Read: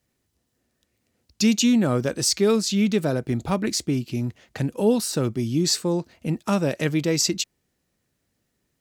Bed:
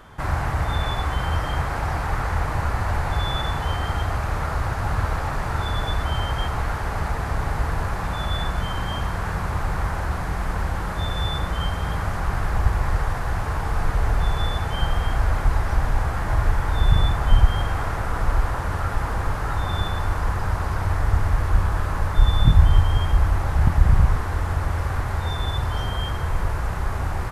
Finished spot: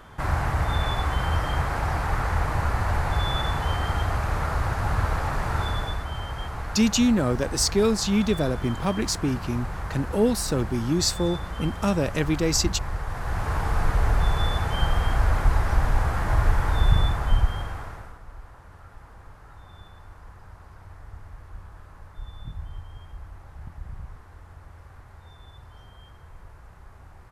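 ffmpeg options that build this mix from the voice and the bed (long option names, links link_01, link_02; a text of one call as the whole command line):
ffmpeg -i stem1.wav -i stem2.wav -filter_complex "[0:a]adelay=5350,volume=-1.5dB[link_01];[1:a]volume=6.5dB,afade=type=out:start_time=5.61:duration=0.44:silence=0.446684,afade=type=in:start_time=13.05:duration=0.51:silence=0.421697,afade=type=out:start_time=16.68:duration=1.51:silence=0.0794328[link_02];[link_01][link_02]amix=inputs=2:normalize=0" out.wav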